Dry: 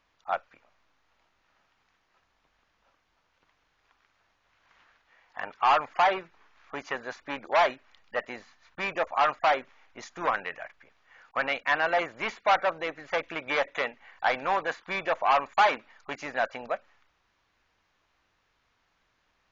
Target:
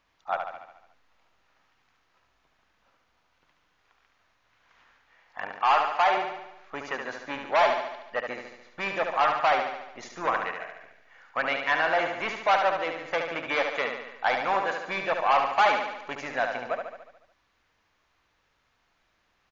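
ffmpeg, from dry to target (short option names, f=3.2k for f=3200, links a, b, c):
-filter_complex "[0:a]asettb=1/sr,asplit=3[a][b][c];[a]atrim=end=5.614[d];[b]atrim=start=5.61:end=6.17,asetpts=PTS-STARTPTS,afade=t=in:d=0.004:c=qsin,afade=t=out:st=0.556:d=0.004:c=qsin,equalizer=f=95:w=0.6:g=-13.5[e];[c]atrim=start=6.166[f];[d][e]acrossfade=d=0.004:c1=hsin:c2=qsin[g];[g][f]acrossfade=d=0.004:c1=qsin:c2=hsin,aecho=1:1:72|144|216|288|360|432|504|576:0.531|0.308|0.179|0.104|0.0601|0.0348|0.0202|0.0117"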